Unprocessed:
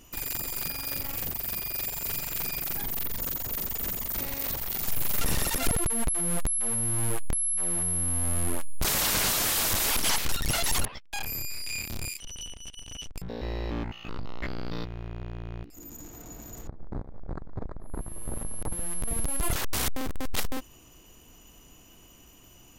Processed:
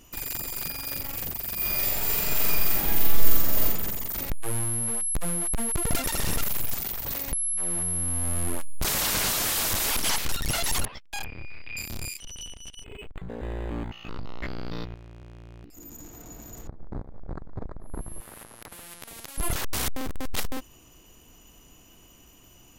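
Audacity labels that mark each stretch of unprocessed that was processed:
1.550000	3.660000	thrown reverb, RT60 1.3 s, DRR −6.5 dB
4.300000	7.320000	reverse
11.240000	11.770000	Butterworth low-pass 3,400 Hz
12.840000	13.910000	linearly interpolated sample-rate reduction rate divided by 8×
14.940000	15.640000	tube saturation drive 42 dB, bias 0.7
18.200000	19.380000	every bin compressed towards the loudest bin 4 to 1

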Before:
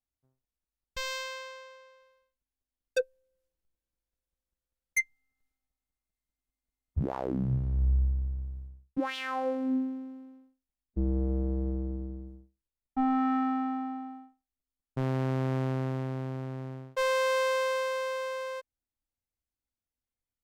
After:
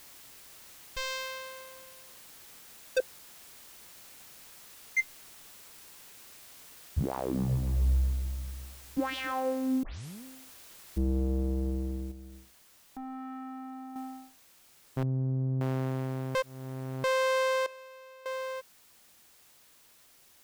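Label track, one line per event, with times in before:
1.200000	1.630000	parametric band 13,000 Hz +12 dB 0.24 octaves
3.000000	4.990000	resonant band-pass 2,200 Hz, Q 1.3
7.030000	9.320000	echo machine with several playback heads 136 ms, heads first and second, feedback 61%, level −17 dB
9.830000	9.830000	tape start 0.41 s
10.980000	10.980000	noise floor change −52 dB −60 dB
12.110000	13.960000	downward compressor 3 to 1, threshold −43 dBFS
15.030000	15.610000	expanding power law on the bin magnitudes exponent 2.2
16.350000	17.040000	reverse
17.660000	18.260000	tuned comb filter 200 Hz, decay 0.68 s, mix 90%

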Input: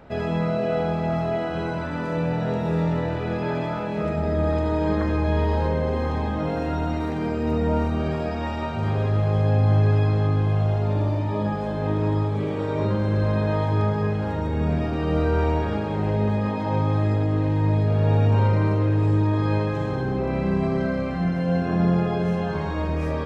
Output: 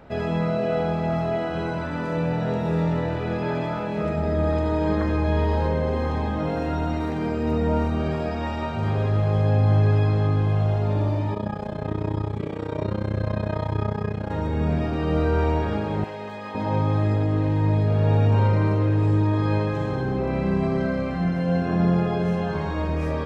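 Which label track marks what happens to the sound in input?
11.340000	14.310000	amplitude modulation modulator 31 Hz, depth 80%
16.040000	16.550000	high-pass filter 1,200 Hz 6 dB per octave

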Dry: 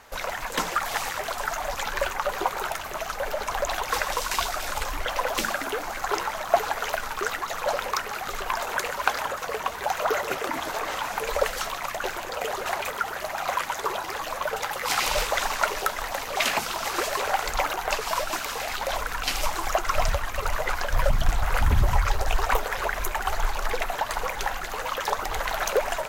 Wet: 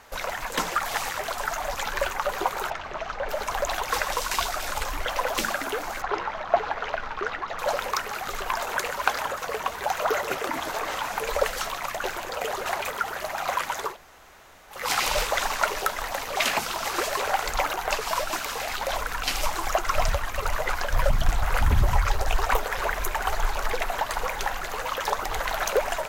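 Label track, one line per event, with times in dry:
2.700000	3.290000	high-frequency loss of the air 170 metres
6.020000	7.590000	high-frequency loss of the air 220 metres
13.900000	14.770000	fill with room tone, crossfade 0.16 s
22.400000	23.020000	delay throw 360 ms, feedback 85%, level −13.5 dB

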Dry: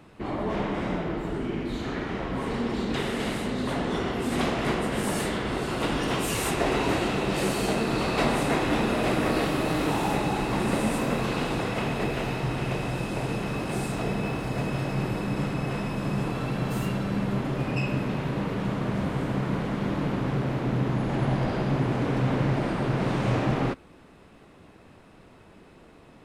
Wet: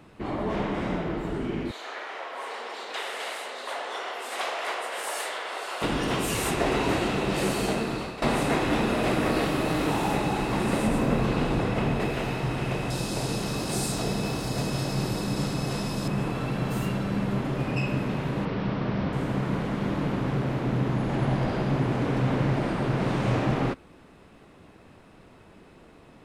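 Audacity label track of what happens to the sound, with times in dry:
1.710000	5.820000	high-pass filter 560 Hz 24 dB per octave
7.490000	8.220000	fade out equal-power, to −17.5 dB
10.870000	12.000000	spectral tilt −1.5 dB per octave
12.900000	16.080000	high shelf with overshoot 3,400 Hz +9 dB, Q 1.5
18.450000	19.130000	Butterworth low-pass 5,800 Hz 72 dB per octave

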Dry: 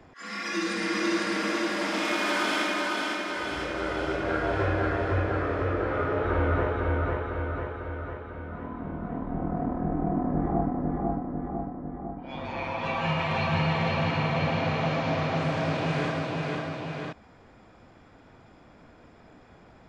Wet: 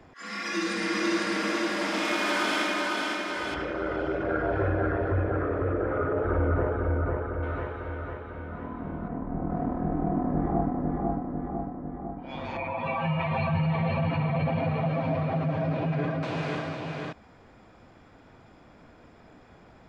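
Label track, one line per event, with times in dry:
3.540000	7.430000	spectral envelope exaggerated exponent 1.5
9.080000	9.500000	high-frequency loss of the air 420 metres
12.570000	16.230000	expanding power law on the bin magnitudes exponent 1.6

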